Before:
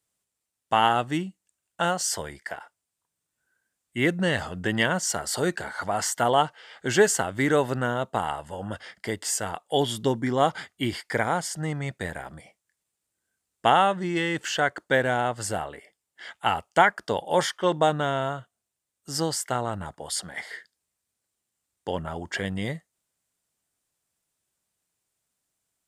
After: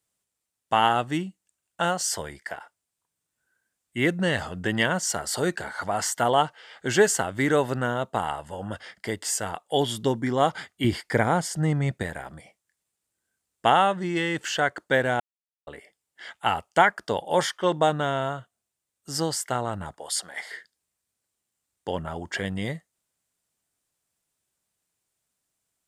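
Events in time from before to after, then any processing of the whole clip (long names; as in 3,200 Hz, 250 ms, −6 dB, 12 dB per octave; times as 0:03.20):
0:10.84–0:12.03: low-shelf EQ 480 Hz +7.5 dB
0:15.20–0:15.67: silence
0:19.97–0:20.52: bass and treble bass −15 dB, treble +2 dB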